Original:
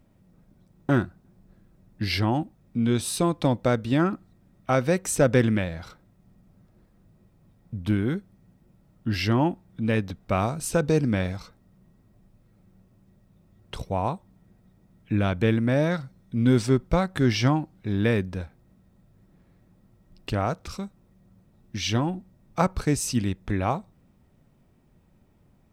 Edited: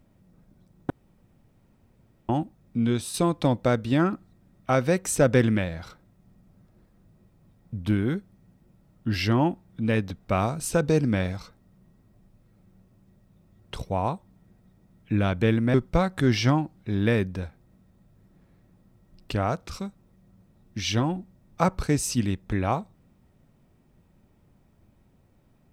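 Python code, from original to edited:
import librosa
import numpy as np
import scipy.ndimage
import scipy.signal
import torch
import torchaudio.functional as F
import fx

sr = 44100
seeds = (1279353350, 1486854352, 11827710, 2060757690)

y = fx.edit(x, sr, fx.room_tone_fill(start_s=0.9, length_s=1.39),
    fx.fade_out_to(start_s=2.83, length_s=0.31, floor_db=-7.0),
    fx.cut(start_s=15.74, length_s=0.98), tone=tone)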